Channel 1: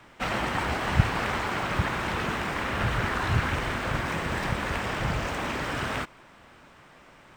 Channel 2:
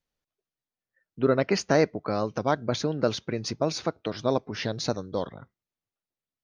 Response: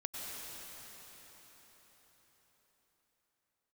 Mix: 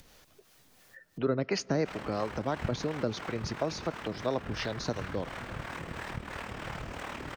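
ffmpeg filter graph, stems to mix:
-filter_complex "[0:a]tremolo=f=38:d=0.621,adelay=1650,volume=0.355[s0];[1:a]acrossover=split=350[s1][s2];[s2]acompressor=threshold=0.0708:ratio=6[s3];[s1][s3]amix=inputs=2:normalize=0,volume=0.708,asplit=3[s4][s5][s6];[s5]volume=0.075[s7];[s6]apad=whole_len=397450[s8];[s0][s8]sidechaincompress=threshold=0.0316:ratio=8:attack=27:release=139[s9];[2:a]atrim=start_sample=2205[s10];[s7][s10]afir=irnorm=-1:irlink=0[s11];[s9][s4][s11]amix=inputs=3:normalize=0,acrossover=split=420[s12][s13];[s12]aeval=exprs='val(0)*(1-0.5/2+0.5/2*cos(2*PI*2.9*n/s))':c=same[s14];[s13]aeval=exprs='val(0)*(1-0.5/2-0.5/2*cos(2*PI*2.9*n/s))':c=same[s15];[s14][s15]amix=inputs=2:normalize=0,acompressor=mode=upward:threshold=0.0251:ratio=2.5"

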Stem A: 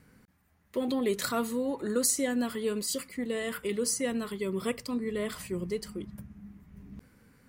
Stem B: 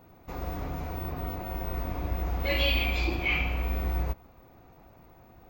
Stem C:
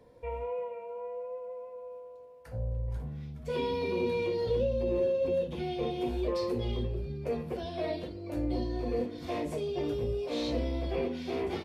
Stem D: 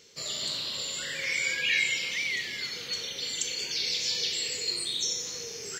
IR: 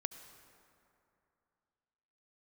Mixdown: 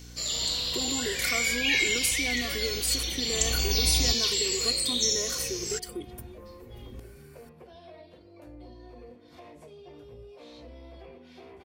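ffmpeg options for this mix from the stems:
-filter_complex "[0:a]aecho=1:1:2.7:0.85,acompressor=threshold=0.0224:ratio=6,volume=1.06[s0];[1:a]equalizer=f=2100:t=o:w=1.6:g=-12,afade=t=in:st=3.26:d=0.27:silence=0.251189[s1];[2:a]equalizer=f=1100:w=0.4:g=10,acrossover=split=180[s2][s3];[s3]acompressor=threshold=0.0224:ratio=4[s4];[s2][s4]amix=inputs=2:normalize=0,adelay=100,volume=0.178[s5];[3:a]aeval=exprs='val(0)+0.00631*(sin(2*PI*60*n/s)+sin(2*PI*2*60*n/s)/2+sin(2*PI*3*60*n/s)/3+sin(2*PI*4*60*n/s)/4+sin(2*PI*5*60*n/s)/5)':c=same,volume=0.841[s6];[s0][s1][s5][s6]amix=inputs=4:normalize=0,highshelf=f=3700:g=8.5"

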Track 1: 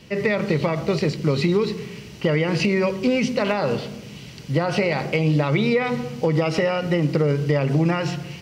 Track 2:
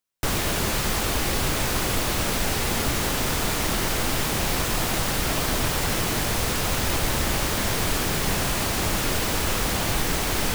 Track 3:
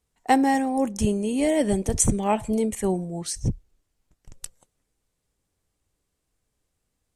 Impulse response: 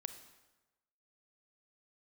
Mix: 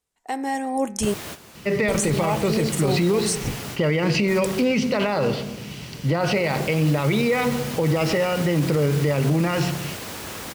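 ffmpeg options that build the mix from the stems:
-filter_complex "[0:a]adelay=1550,volume=0.562[s0];[1:a]highpass=100,adelay=800,volume=0.473,afade=t=in:st=6.18:d=0.58:silence=0.237137,asplit=2[s1][s2];[s2]volume=0.422[s3];[2:a]lowshelf=f=230:g=-11.5,bandreject=f=117.4:t=h:w=4,bandreject=f=234.8:t=h:w=4,bandreject=f=352.2:t=h:w=4,bandreject=f=469.6:t=h:w=4,bandreject=f=587:t=h:w=4,bandreject=f=704.4:t=h:w=4,bandreject=f=821.8:t=h:w=4,bandreject=f=939.2:t=h:w=4,bandreject=f=1056.6:t=h:w=4,bandreject=f=1174:t=h:w=4,bandreject=f=1291.4:t=h:w=4,bandreject=f=1408.8:t=h:w=4,bandreject=f=1526.2:t=h:w=4,bandreject=f=1643.6:t=h:w=4,bandreject=f=1761:t=h:w=4,bandreject=f=1878.4:t=h:w=4,bandreject=f=1995.8:t=h:w=4,bandreject=f=2113.2:t=h:w=4,bandreject=f=2230.6:t=h:w=4,bandreject=f=2348:t=h:w=4,bandreject=f=2465.4:t=h:w=4,bandreject=f=2582.8:t=h:w=4,alimiter=limit=0.141:level=0:latency=1:release=214,volume=0.841,asplit=3[s4][s5][s6];[s4]atrim=end=1.14,asetpts=PTS-STARTPTS,afade=t=out:st=1.136:d=0.004:c=hsin[s7];[s5]atrim=start=1.14:end=1.88,asetpts=PTS-STARTPTS,volume=0[s8];[s6]atrim=start=1.88,asetpts=PTS-STARTPTS,afade=t=in:d=0.004:c=hsin[s9];[s7][s8][s9]concat=n=3:v=0:a=1,asplit=2[s10][s11];[s11]apad=whole_len=500158[s12];[s1][s12]sidechaingate=range=0.0224:threshold=0.00141:ratio=16:detection=peak[s13];[3:a]atrim=start_sample=2205[s14];[s3][s14]afir=irnorm=-1:irlink=0[s15];[s0][s13][s10][s15]amix=inputs=4:normalize=0,dynaudnorm=f=210:g=7:m=2.51,alimiter=limit=0.237:level=0:latency=1:release=26"

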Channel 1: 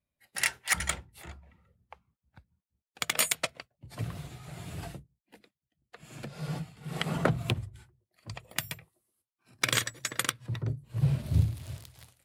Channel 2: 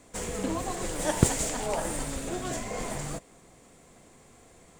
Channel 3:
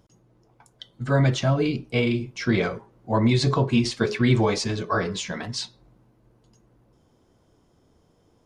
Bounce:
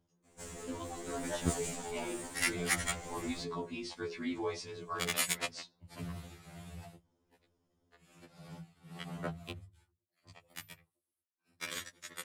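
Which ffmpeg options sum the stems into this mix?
-filter_complex "[0:a]adelay=2000,volume=0.794,afade=t=out:st=6.31:d=0.62:silence=0.375837[s0];[1:a]adelay=250,volume=0.376[s1];[2:a]volume=0.2[s2];[s0][s1][s2]amix=inputs=3:normalize=0,afftfilt=real='re*2*eq(mod(b,4),0)':imag='im*2*eq(mod(b,4),0)':win_size=2048:overlap=0.75"

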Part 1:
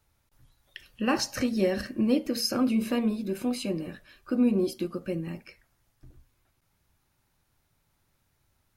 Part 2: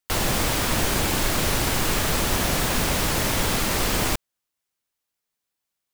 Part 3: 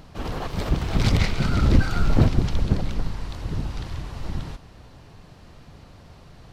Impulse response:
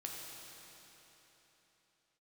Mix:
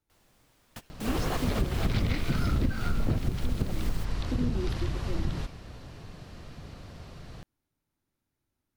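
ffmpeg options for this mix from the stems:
-filter_complex "[0:a]equalizer=f=290:w=1.5:g=10.5,volume=0.211,asplit=2[s0][s1];[1:a]volume=0.15[s2];[2:a]acrossover=split=5000[s3][s4];[s4]acompressor=threshold=0.00282:ratio=4:attack=1:release=60[s5];[s3][s5]amix=inputs=2:normalize=0,equalizer=f=880:t=o:w=0.49:g=-4,adelay=900,volume=1.26[s6];[s1]apad=whole_len=261806[s7];[s2][s7]sidechaingate=range=0.0501:threshold=0.00141:ratio=16:detection=peak[s8];[s0][s8][s6]amix=inputs=3:normalize=0,acompressor=threshold=0.0708:ratio=8"

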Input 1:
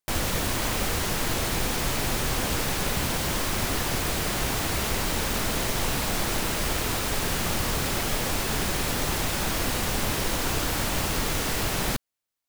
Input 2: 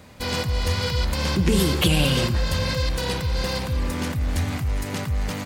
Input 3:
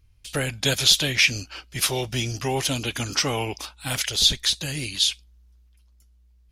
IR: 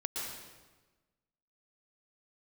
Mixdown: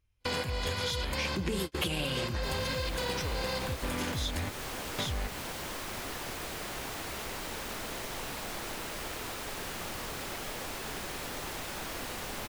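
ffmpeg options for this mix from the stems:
-filter_complex "[0:a]adelay=2350,volume=0.335[s0];[1:a]bandreject=f=5800:w=12,volume=1.06[s1];[2:a]bandreject=f=4500:w=7.3,volume=0.316,asplit=3[s2][s3][s4];[s2]atrim=end=4.31,asetpts=PTS-STARTPTS,afade=t=out:st=4.306:d=0.004:c=hsin[s5];[s3]atrim=start=4.31:end=4.98,asetpts=PTS-STARTPTS,volume=0[s6];[s4]atrim=start=4.98,asetpts=PTS-STARTPTS,afade=t=in:d=0.004:c=hsin[s7];[s5][s6][s7]concat=n=3:v=0:a=1,asplit=2[s8][s9];[s9]apad=whole_len=240407[s10];[s1][s10]sidechaingate=range=0.00251:threshold=0.00224:ratio=16:detection=peak[s11];[s0][s11][s8]amix=inputs=3:normalize=0,bass=f=250:g=-7,treble=f=4000:g=-3,acompressor=threshold=0.0316:ratio=5"

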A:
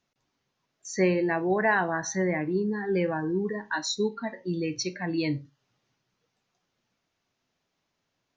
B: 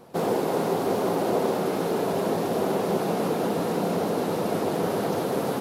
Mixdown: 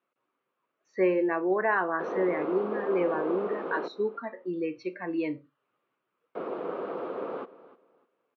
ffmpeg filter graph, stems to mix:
-filter_complex "[0:a]volume=0.841[s0];[1:a]adelay=1850,volume=0.355,asplit=3[s1][s2][s3];[s1]atrim=end=3.88,asetpts=PTS-STARTPTS,afade=t=out:st=3.876:d=0.004:c=hsin[s4];[s2]atrim=start=3.88:end=6.35,asetpts=PTS-STARTPTS,volume=0[s5];[s3]atrim=start=6.35,asetpts=PTS-STARTPTS,afade=t=in:d=0.004:c=hsin[s6];[s4][s5][s6]concat=n=3:v=0:a=1,asplit=2[s7][s8];[s8]volume=0.126,aecho=0:1:303|606|909|1212:1|0.23|0.0529|0.0122[s9];[s0][s7][s9]amix=inputs=3:normalize=0,highpass=330,equalizer=f=350:t=q:w=4:g=4,equalizer=f=510:t=q:w=4:g=4,equalizer=f=780:t=q:w=4:g=-4,equalizer=f=1200:t=q:w=4:g=8,equalizer=f=1900:t=q:w=4:g=-5,lowpass=f=2600:w=0.5412,lowpass=f=2600:w=1.3066"

